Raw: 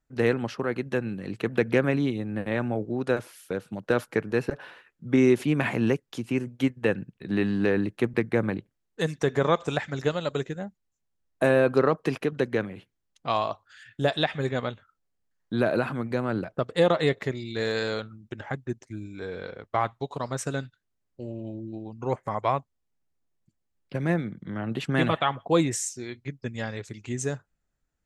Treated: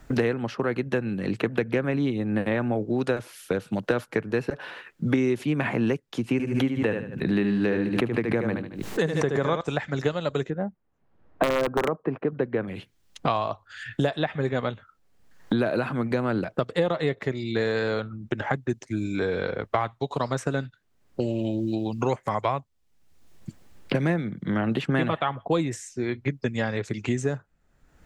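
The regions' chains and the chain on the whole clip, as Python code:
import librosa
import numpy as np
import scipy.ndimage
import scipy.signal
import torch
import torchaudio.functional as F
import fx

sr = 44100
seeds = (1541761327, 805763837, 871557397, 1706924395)

y = fx.chain(x, sr, fx.echo_feedback(ms=74, feedback_pct=27, wet_db=-6.5),
    fx.pre_swell(db_per_s=79.0), at=(6.32, 9.61))
y = fx.chain(y, sr, fx.lowpass(hz=1300.0, slope=12),
    fx.low_shelf(hz=84.0, db=-10.0),
    fx.overflow_wrap(gain_db=12.0), at=(10.5, 12.68))
y = fx.high_shelf(y, sr, hz=4800.0, db=-7.0)
y = fx.band_squash(y, sr, depth_pct=100)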